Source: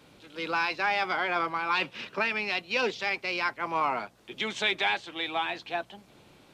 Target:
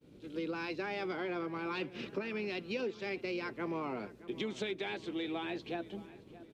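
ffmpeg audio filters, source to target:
ffmpeg -i in.wav -filter_complex "[0:a]agate=range=-33dB:threshold=-50dB:ratio=3:detection=peak,lowshelf=frequency=570:width_type=q:width=1.5:gain=12,acompressor=threshold=-28dB:ratio=6,asplit=2[link_01][link_02];[link_02]adelay=621,lowpass=frequency=2500:poles=1,volume=-16.5dB,asplit=2[link_03][link_04];[link_04]adelay=621,lowpass=frequency=2500:poles=1,volume=0.53,asplit=2[link_05][link_06];[link_06]adelay=621,lowpass=frequency=2500:poles=1,volume=0.53,asplit=2[link_07][link_08];[link_08]adelay=621,lowpass=frequency=2500:poles=1,volume=0.53,asplit=2[link_09][link_10];[link_10]adelay=621,lowpass=frequency=2500:poles=1,volume=0.53[link_11];[link_03][link_05][link_07][link_09][link_11]amix=inputs=5:normalize=0[link_12];[link_01][link_12]amix=inputs=2:normalize=0,volume=-6.5dB" out.wav

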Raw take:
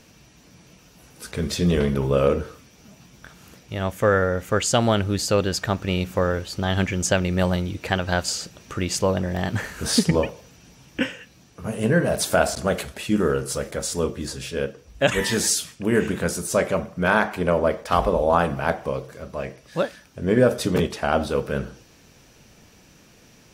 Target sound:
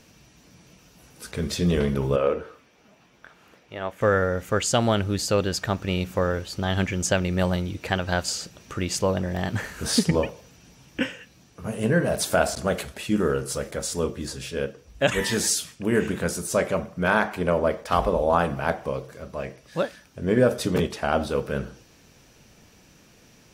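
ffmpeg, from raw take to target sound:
ffmpeg -i in.wav -filter_complex "[0:a]asettb=1/sr,asplit=3[link_01][link_02][link_03];[link_01]atrim=end=2.164[link_04];[link_02]atrim=start=2.16:end=4.01,asetpts=PTS-STARTPTS,afade=type=in:duration=0.004:curve=qsin,afade=type=out:start_time=1.846:duration=0.004:curve=qsin,bass=frequency=250:gain=-13,treble=frequency=4000:gain=-13[link_05];[link_03]atrim=start=4.006[link_06];[link_04][link_05]acrossfade=duration=0.004:curve1=hsin:curve2=qsin[link_07];[link_07][link_06]acrossfade=duration=0.004:curve1=qsin:curve2=hsin,volume=-2dB" out.wav

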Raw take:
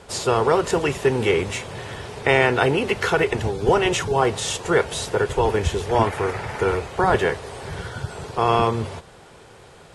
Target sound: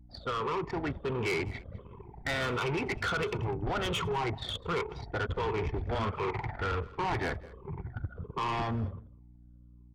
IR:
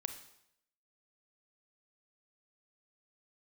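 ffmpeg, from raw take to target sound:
-filter_complex "[0:a]afftfilt=real='re*pow(10,12/40*sin(2*PI*(0.75*log(max(b,1)*sr/1024/100)/log(2)-(-1.4)*(pts-256)/sr)))':imag='im*pow(10,12/40*sin(2*PI*(0.75*log(max(b,1)*sr/1024/100)/log(2)-(-1.4)*(pts-256)/sr)))':win_size=1024:overlap=0.75,lowpass=3900,bandreject=frequency=215.4:width_type=h:width=4,bandreject=frequency=430.8:width_type=h:width=4,bandreject=frequency=646.2:width_type=h:width=4,bandreject=frequency=861.6:width_type=h:width=4,bandreject=frequency=1077:width_type=h:width=4,bandreject=frequency=1292.4:width_type=h:width=4,bandreject=frequency=1507.8:width_type=h:width=4,bandreject=frequency=1723.2:width_type=h:width=4,bandreject=frequency=1938.6:width_type=h:width=4,bandreject=frequency=2154:width_type=h:width=4,bandreject=frequency=2369.4:width_type=h:width=4,bandreject=frequency=2584.8:width_type=h:width=4,bandreject=frequency=2800.2:width_type=h:width=4,bandreject=frequency=3015.6:width_type=h:width=4,bandreject=frequency=3231:width_type=h:width=4,bandreject=frequency=3446.4:width_type=h:width=4,bandreject=frequency=3661.8:width_type=h:width=4,anlmdn=398,aecho=1:1:0.9:0.47,acrossover=split=1300[link_01][link_02];[link_01]alimiter=limit=-15dB:level=0:latency=1:release=18[link_03];[link_03][link_02]amix=inputs=2:normalize=0,dynaudnorm=framelen=180:gausssize=11:maxgain=3.5dB,aeval=exprs='val(0)+0.00562*(sin(2*PI*60*n/s)+sin(2*PI*2*60*n/s)/2+sin(2*PI*3*60*n/s)/3+sin(2*PI*4*60*n/s)/4+sin(2*PI*5*60*n/s)/5)':channel_layout=same,asoftclip=type=tanh:threshold=-18.5dB,aecho=1:1:202:0.0794,volume=-8.5dB"

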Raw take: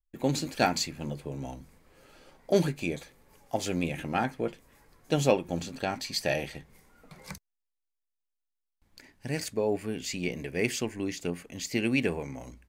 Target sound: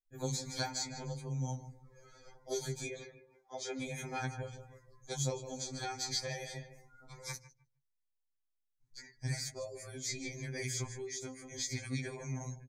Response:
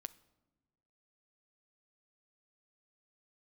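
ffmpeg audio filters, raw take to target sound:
-filter_complex "[0:a]asettb=1/sr,asplit=3[link_01][link_02][link_03];[link_01]atrim=end=2.884[link_04];[link_02]atrim=start=2.88:end=3.81,asetpts=PTS-STARTPTS,afade=type=in:duration=0.004:curve=qsin,afade=type=out:start_time=0.926:duration=0.004:curve=qsin,acrossover=split=220 4100:gain=0.0631 1 0.158[link_05][link_06][link_07];[link_05][link_06][link_07]amix=inputs=3:normalize=0[link_08];[link_03]atrim=start=3.806[link_09];[link_04][link_08]acrossfade=duration=0.004:curve1=hsin:curve2=qsin[link_10];[link_10][link_09]acrossfade=duration=0.004:curve1=qsin:curve2=hsin,asplit=2[link_11][link_12];[link_12]adelay=153,lowpass=frequency=4700:poles=1,volume=-15dB,asplit=2[link_13][link_14];[link_14]adelay=153,lowpass=frequency=4700:poles=1,volume=0.36,asplit=2[link_15][link_16];[link_16]adelay=153,lowpass=frequency=4700:poles=1,volume=0.36[link_17];[link_11][link_13][link_15][link_17]amix=inputs=4:normalize=0,asettb=1/sr,asplit=3[link_18][link_19][link_20];[link_18]atrim=end=9.334[link_21];[link_19]atrim=start=9.33:end=10.26,asetpts=PTS-STARTPTS,afade=type=in:duration=0.004:curve=qsin,afade=type=out:start_time=0.926:duration=0.004:curve=qsin,agate=range=-33dB:threshold=-33dB:ratio=3:detection=peak[link_22];[link_20]atrim=start=10.256[link_23];[link_21][link_22]acrossfade=duration=0.004:curve1=hsin:curve2=qsin[link_24];[link_24][link_23]acrossfade=duration=0.004:curve1=qsin:curve2=hsin,asettb=1/sr,asplit=3[link_25][link_26][link_27];[link_25]atrim=end=10.954[link_28];[link_26]atrim=start=10.95:end=11.45,asetpts=PTS-STARTPTS,afade=type=in:duration=0.004:curve=qsin,afade=type=out:start_time=0.496:duration=0.004:curve=qsin,acompressor=threshold=-38dB:ratio=2.5[link_29];[link_27]atrim=start=11.446[link_30];[link_28][link_29]acrossfade=duration=0.004:curve1=hsin:curve2=qsin[link_31];[link_31][link_30]acrossfade=duration=0.004:curve1=qsin:curve2=hsin,bandreject=frequency=60:width_type=h:width=6,bandreject=frequency=120:width_type=h:width=6,bandreject=frequency=180:width_type=h:width=6,bandreject=frequency=240:width_type=h:width=6,bandreject=frequency=300:width_type=h:width=6,bandreject=frequency=360:width_type=h:width=6,bandreject=frequency=420:width_type=h:width=6,acrossover=split=85|3500[link_32][link_33][link_34];[link_32]acompressor=threshold=-57dB:ratio=4[link_35];[link_33]acompressor=threshold=-36dB:ratio=4[link_36];[link_34]acompressor=threshold=-45dB:ratio=4[link_37];[link_35][link_36][link_37]amix=inputs=3:normalize=0,equalizer=frequency=100:width_type=o:width=0.67:gain=9,equalizer=frequency=250:width_type=o:width=0.67:gain=-8,equalizer=frequency=630:width_type=o:width=0.67:gain=-4,equalizer=frequency=6300:width_type=o:width=0.67:gain=9,afftdn=noise_reduction=20:noise_floor=-59,asuperstop=centerf=2800:order=12:qfactor=4.4,afftfilt=real='re*2.45*eq(mod(b,6),0)':imag='im*2.45*eq(mod(b,6),0)':win_size=2048:overlap=0.75,volume=2dB"

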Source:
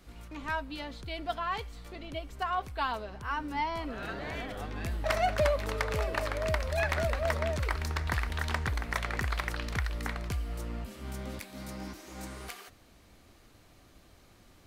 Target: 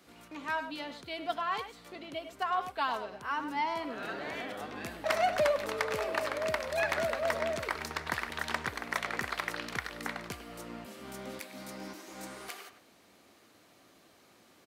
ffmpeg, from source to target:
ffmpeg -i in.wav -filter_complex "[0:a]highpass=220,asplit=2[link_01][link_02];[link_02]adelay=100,highpass=300,lowpass=3400,asoftclip=type=hard:threshold=-26.5dB,volume=-9dB[link_03];[link_01][link_03]amix=inputs=2:normalize=0" out.wav

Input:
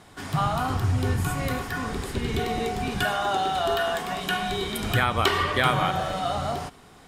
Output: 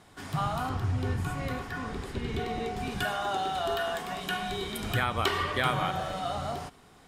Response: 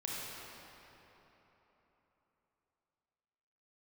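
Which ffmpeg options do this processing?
-filter_complex "[0:a]asettb=1/sr,asplit=3[link_01][link_02][link_03];[link_01]atrim=end=0.694[link_04];[link_02]atrim=start=0.69:end=2.77,asetpts=PTS-STARTPTS,afade=type=in:duration=0.004:curve=qsin,afade=type=out:start_time=2.076:duration=0.004:curve=qsin,highshelf=frequency=7200:gain=-11[link_05];[link_03]atrim=start=2.766[link_06];[link_04][link_05]acrossfade=duration=0.004:curve1=hsin:curve2=qsin[link_07];[link_07][link_06]acrossfade=duration=0.004:curve1=qsin:curve2=hsin,volume=-5.5dB"

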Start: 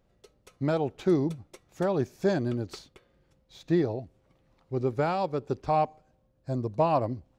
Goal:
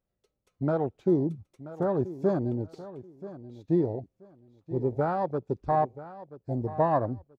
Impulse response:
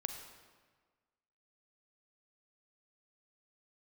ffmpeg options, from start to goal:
-af "afwtdn=0.0251,aecho=1:1:981|1962:0.168|0.0386"

